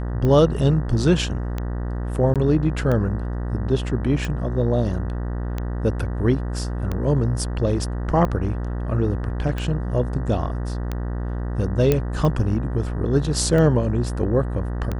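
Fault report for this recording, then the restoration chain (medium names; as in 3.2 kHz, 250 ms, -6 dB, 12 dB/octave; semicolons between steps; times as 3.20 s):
buzz 60 Hz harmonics 32 -26 dBFS
tick 45 rpm -14 dBFS
2.34–2.36 s: dropout 17 ms
11.92 s: pop -6 dBFS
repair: de-click; de-hum 60 Hz, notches 32; interpolate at 2.34 s, 17 ms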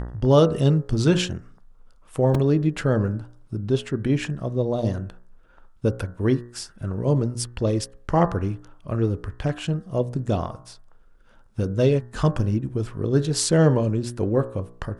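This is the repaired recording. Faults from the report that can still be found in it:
nothing left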